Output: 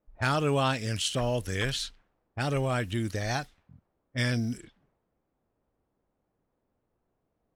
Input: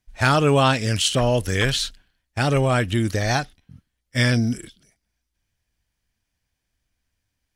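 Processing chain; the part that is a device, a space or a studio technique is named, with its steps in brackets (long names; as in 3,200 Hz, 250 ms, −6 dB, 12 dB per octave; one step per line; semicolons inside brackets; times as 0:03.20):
cassette deck with a dynamic noise filter (white noise bed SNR 31 dB; low-pass that shuts in the quiet parts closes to 500 Hz, open at −19 dBFS)
level −9 dB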